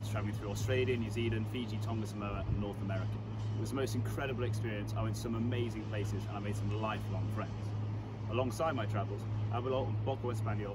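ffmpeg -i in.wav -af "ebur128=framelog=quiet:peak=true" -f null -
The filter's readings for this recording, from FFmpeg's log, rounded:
Integrated loudness:
  I:         -36.7 LUFS
  Threshold: -46.7 LUFS
Loudness range:
  LRA:         1.0 LU
  Threshold: -57.0 LUFS
  LRA low:   -37.4 LUFS
  LRA high:  -36.4 LUFS
True peak:
  Peak:      -20.3 dBFS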